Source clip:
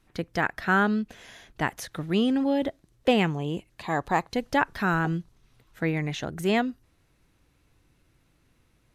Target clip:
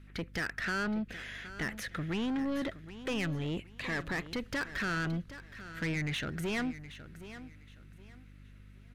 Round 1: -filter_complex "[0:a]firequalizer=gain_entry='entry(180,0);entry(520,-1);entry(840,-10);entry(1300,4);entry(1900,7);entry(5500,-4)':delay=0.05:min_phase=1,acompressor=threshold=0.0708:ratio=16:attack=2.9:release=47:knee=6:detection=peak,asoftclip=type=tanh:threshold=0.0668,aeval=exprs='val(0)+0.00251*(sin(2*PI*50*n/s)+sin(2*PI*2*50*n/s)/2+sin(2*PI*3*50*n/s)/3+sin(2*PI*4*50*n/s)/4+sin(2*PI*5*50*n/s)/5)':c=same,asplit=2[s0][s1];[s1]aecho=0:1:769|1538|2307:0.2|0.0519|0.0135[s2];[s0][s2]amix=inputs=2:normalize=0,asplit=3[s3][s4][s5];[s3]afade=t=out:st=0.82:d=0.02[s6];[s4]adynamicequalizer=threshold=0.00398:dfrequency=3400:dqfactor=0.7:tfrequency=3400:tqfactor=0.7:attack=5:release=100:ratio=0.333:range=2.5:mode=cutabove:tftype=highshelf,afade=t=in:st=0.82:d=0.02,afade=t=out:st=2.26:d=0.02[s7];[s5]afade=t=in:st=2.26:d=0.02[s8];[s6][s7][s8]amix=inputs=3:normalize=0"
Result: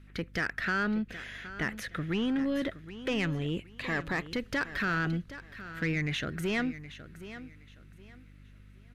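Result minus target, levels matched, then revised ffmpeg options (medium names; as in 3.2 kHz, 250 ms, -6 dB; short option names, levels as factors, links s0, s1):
saturation: distortion -6 dB
-filter_complex "[0:a]firequalizer=gain_entry='entry(180,0);entry(520,-1);entry(840,-10);entry(1300,4);entry(1900,7);entry(5500,-4)':delay=0.05:min_phase=1,acompressor=threshold=0.0708:ratio=16:attack=2.9:release=47:knee=6:detection=peak,asoftclip=type=tanh:threshold=0.0316,aeval=exprs='val(0)+0.00251*(sin(2*PI*50*n/s)+sin(2*PI*2*50*n/s)/2+sin(2*PI*3*50*n/s)/3+sin(2*PI*4*50*n/s)/4+sin(2*PI*5*50*n/s)/5)':c=same,asplit=2[s0][s1];[s1]aecho=0:1:769|1538|2307:0.2|0.0519|0.0135[s2];[s0][s2]amix=inputs=2:normalize=0,asplit=3[s3][s4][s5];[s3]afade=t=out:st=0.82:d=0.02[s6];[s4]adynamicequalizer=threshold=0.00398:dfrequency=3400:dqfactor=0.7:tfrequency=3400:tqfactor=0.7:attack=5:release=100:ratio=0.333:range=2.5:mode=cutabove:tftype=highshelf,afade=t=in:st=0.82:d=0.02,afade=t=out:st=2.26:d=0.02[s7];[s5]afade=t=in:st=2.26:d=0.02[s8];[s6][s7][s8]amix=inputs=3:normalize=0"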